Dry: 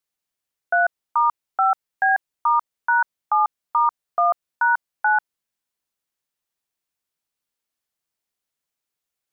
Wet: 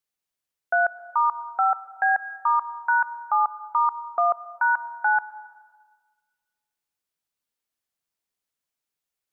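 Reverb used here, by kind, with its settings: plate-style reverb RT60 1.5 s, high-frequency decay 0.75×, pre-delay 95 ms, DRR 17 dB; trim -2.5 dB

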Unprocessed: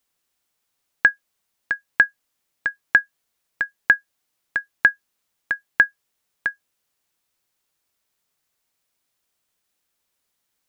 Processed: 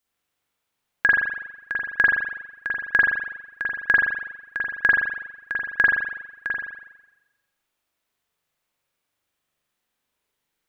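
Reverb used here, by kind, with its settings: spring tank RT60 1 s, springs 41 ms, chirp 35 ms, DRR -5.5 dB; trim -5.5 dB

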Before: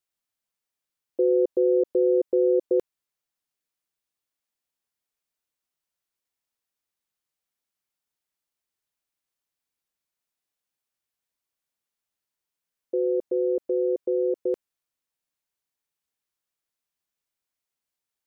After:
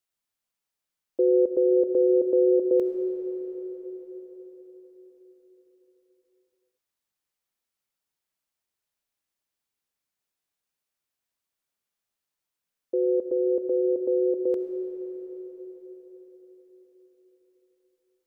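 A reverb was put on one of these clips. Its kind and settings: algorithmic reverb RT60 5 s, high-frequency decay 0.7×, pre-delay 25 ms, DRR 5.5 dB

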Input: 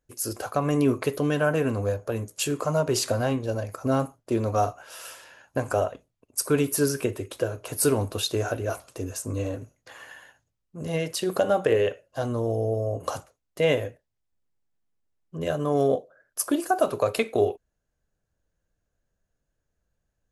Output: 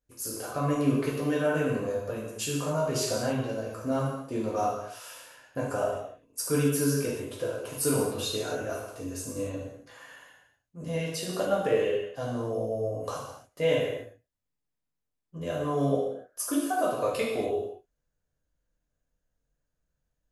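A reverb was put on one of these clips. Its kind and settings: gated-style reverb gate 310 ms falling, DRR -5 dB; trim -9.5 dB

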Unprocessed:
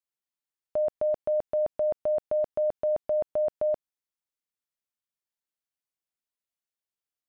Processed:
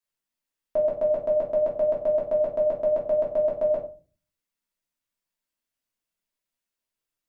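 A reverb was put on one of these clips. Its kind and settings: simulated room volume 190 m³, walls furnished, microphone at 2.8 m

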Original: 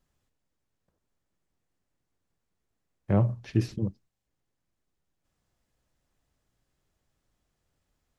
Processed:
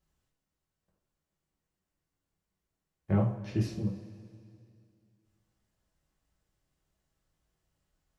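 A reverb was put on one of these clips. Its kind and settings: two-slope reverb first 0.35 s, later 2.5 s, from -18 dB, DRR -1.5 dB; trim -6.5 dB

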